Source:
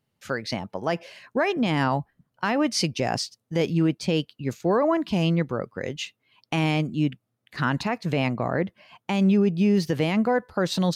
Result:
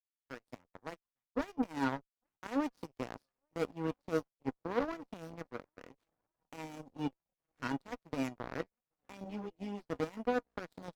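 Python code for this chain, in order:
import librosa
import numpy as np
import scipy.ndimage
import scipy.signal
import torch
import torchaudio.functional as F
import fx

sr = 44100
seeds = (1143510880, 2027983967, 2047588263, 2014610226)

p1 = scipy.signal.medfilt(x, 15)
p2 = fx.highpass(p1, sr, hz=200.0, slope=6)
p3 = fx.peak_eq(p2, sr, hz=270.0, db=14.5, octaves=0.29)
p4 = fx.comb_fb(p3, sr, f0_hz=480.0, decay_s=0.16, harmonics='all', damping=0.0, mix_pct=80)
p5 = fx.echo_swing(p4, sr, ms=1420, ratio=1.5, feedback_pct=61, wet_db=-21.5)
p6 = fx.fold_sine(p5, sr, drive_db=5, ceiling_db=-18.0)
p7 = p5 + (p6 * librosa.db_to_amplitude(-8.0))
p8 = fx.cheby_harmonics(p7, sr, harmonics=(3, 5, 8), levels_db=(-9, -38, -43), full_scale_db=-16.5)
p9 = fx.ensemble(p8, sr, at=(9.24, 9.89))
y = p9 * librosa.db_to_amplitude(-4.0)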